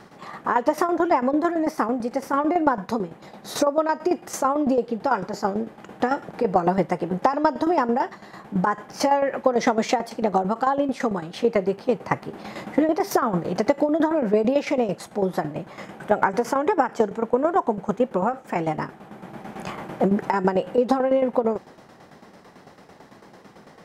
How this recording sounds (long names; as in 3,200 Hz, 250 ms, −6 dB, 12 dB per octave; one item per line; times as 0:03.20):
tremolo saw down 9 Hz, depth 70%